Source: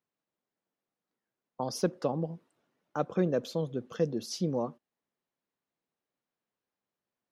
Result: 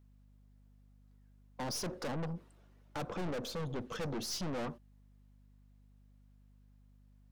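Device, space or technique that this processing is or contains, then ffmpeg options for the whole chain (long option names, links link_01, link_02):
valve amplifier with mains hum: -filter_complex "[0:a]aeval=exprs='(tanh(141*val(0)+0.35)-tanh(0.35))/141':channel_layout=same,aeval=exprs='val(0)+0.000398*(sin(2*PI*50*n/s)+sin(2*PI*2*50*n/s)/2+sin(2*PI*3*50*n/s)/3+sin(2*PI*4*50*n/s)/4+sin(2*PI*5*50*n/s)/5)':channel_layout=same,asettb=1/sr,asplit=3[link_01][link_02][link_03];[link_01]atrim=end=2.334[link_04];[link_02]atrim=start=2.33:end=3.7,asetpts=PTS-STARTPTS,afade=type=in:duration=0.004:curve=qsin,afade=type=out:start_time=1.366:duration=0.004:curve=qsin,adynamicequalizer=threshold=0.00112:dfrequency=1700:dqfactor=0.7:tfrequency=1700:tqfactor=0.7:attack=5:release=100:ratio=0.375:range=2:mode=cutabove:tftype=highshelf[link_05];[link_03]atrim=start=3.696[link_06];[link_04][link_05]acrossfade=duration=0.004:curve1=hsin:curve2=qsin[link_07];[link_07][link_06]acrossfade=duration=0.004:curve1=qsin:curve2=hsin,volume=7dB"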